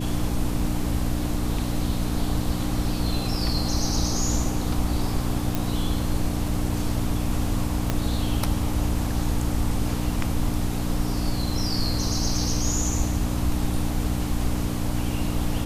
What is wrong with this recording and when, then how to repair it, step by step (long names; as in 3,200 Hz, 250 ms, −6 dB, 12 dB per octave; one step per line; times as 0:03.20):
mains hum 60 Hz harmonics 5 −28 dBFS
0:05.55: click
0:07.90: click −9 dBFS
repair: click removal
hum removal 60 Hz, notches 5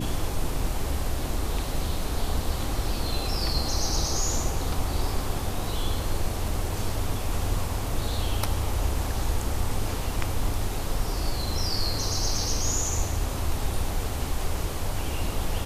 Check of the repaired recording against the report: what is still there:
0:07.90: click